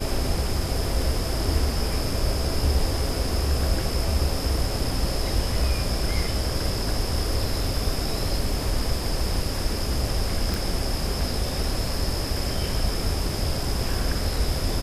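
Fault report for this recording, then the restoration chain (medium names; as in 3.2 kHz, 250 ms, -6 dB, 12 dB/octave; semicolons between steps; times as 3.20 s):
10.54 s: pop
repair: de-click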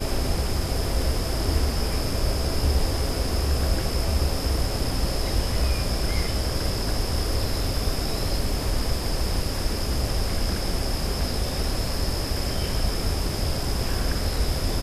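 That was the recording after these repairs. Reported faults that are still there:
nothing left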